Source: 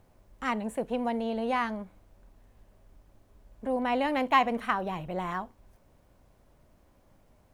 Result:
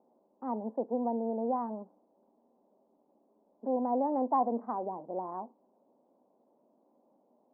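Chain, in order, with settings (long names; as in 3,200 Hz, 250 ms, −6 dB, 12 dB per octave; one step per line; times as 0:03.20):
elliptic band-pass filter 230–910 Hz, stop band 50 dB
level −1 dB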